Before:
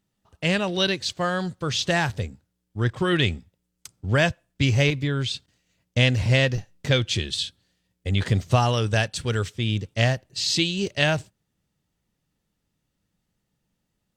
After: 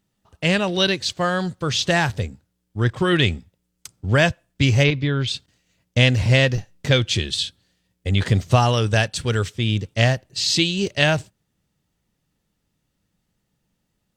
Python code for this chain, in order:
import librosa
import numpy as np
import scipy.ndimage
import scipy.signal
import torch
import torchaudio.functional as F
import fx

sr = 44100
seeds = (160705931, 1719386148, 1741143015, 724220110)

y = fx.lowpass(x, sr, hz=5000.0, slope=24, at=(4.83, 5.26), fade=0.02)
y = F.gain(torch.from_numpy(y), 3.5).numpy()